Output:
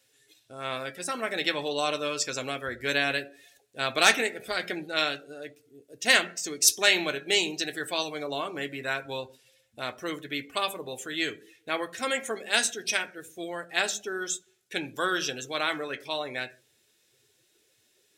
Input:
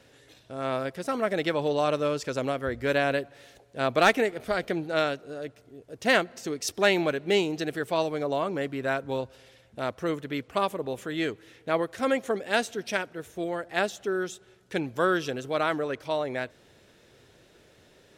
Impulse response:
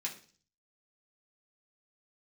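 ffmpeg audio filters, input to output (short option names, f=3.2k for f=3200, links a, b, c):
-filter_complex "[0:a]asplit=2[a][b];[1:a]atrim=start_sample=2205[c];[b][c]afir=irnorm=-1:irlink=0,volume=-3.5dB[d];[a][d]amix=inputs=2:normalize=0,afftdn=nr=14:nf=-43,crystalizer=i=7.5:c=0,volume=-8.5dB"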